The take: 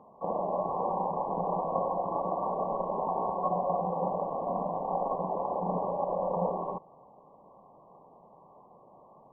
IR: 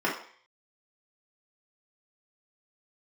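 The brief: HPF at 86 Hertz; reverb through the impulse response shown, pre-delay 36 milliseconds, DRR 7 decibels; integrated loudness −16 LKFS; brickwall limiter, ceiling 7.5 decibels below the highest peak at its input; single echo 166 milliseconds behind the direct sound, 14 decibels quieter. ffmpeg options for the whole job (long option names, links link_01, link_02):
-filter_complex "[0:a]highpass=86,alimiter=limit=-23.5dB:level=0:latency=1,aecho=1:1:166:0.2,asplit=2[link_01][link_02];[1:a]atrim=start_sample=2205,adelay=36[link_03];[link_02][link_03]afir=irnorm=-1:irlink=0,volume=-19.5dB[link_04];[link_01][link_04]amix=inputs=2:normalize=0,volume=16.5dB"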